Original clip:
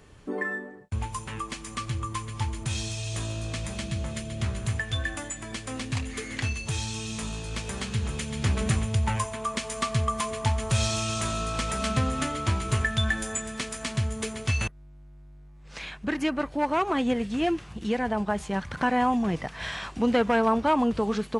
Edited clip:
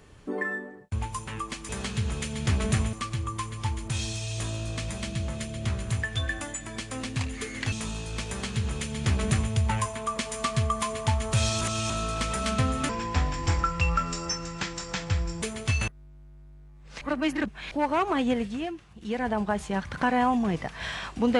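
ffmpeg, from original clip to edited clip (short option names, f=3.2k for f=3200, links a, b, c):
-filter_complex "[0:a]asplit=12[a][b][c][d][e][f][g][h][i][j][k][l];[a]atrim=end=1.692[m];[b]atrim=start=7.658:end=8.902[n];[c]atrim=start=1.688:end=6.482[o];[d]atrim=start=7.098:end=10.992[p];[e]atrim=start=10.988:end=11.282,asetpts=PTS-STARTPTS,areverse[q];[f]atrim=start=11.278:end=12.274[r];[g]atrim=start=12.27:end=14.22,asetpts=PTS-STARTPTS,asetrate=33957,aresample=44100[s];[h]atrim=start=14.216:end=15.812[t];[i]atrim=start=15.808:end=16.512,asetpts=PTS-STARTPTS,areverse[u];[j]atrim=start=16.508:end=17.51,asetpts=PTS-STARTPTS,afade=t=out:st=0.692:d=0.31:silence=0.298538[v];[k]atrim=start=17.51:end=17.76,asetpts=PTS-STARTPTS,volume=-10.5dB[w];[l]atrim=start=17.76,asetpts=PTS-STARTPTS,afade=t=in:d=0.31:silence=0.298538[x];[m][n]acrossfade=d=0.004:c1=hsin:c2=hsin[y];[y][o]acrossfade=d=0.004:c1=hsin:c2=hsin[z];[z][p]acrossfade=d=0.004:c1=hsin:c2=hsin[aa];[aa][q]acrossfade=d=0.004:c1=hsin:c2=hsin[ab];[ab][r]acrossfade=d=0.004:c1=hsin:c2=hsin[ac];[ac][s]acrossfade=d=0.004:c1=hsin:c2=hsin[ad];[ad][t]acrossfade=d=0.004:c1=hsin:c2=hsin[ae];[ae][u]acrossfade=d=0.004:c1=hsin:c2=hsin[af];[v][w][x]concat=n=3:v=0:a=1[ag];[af][ag]acrossfade=d=0.004:c1=hsin:c2=hsin"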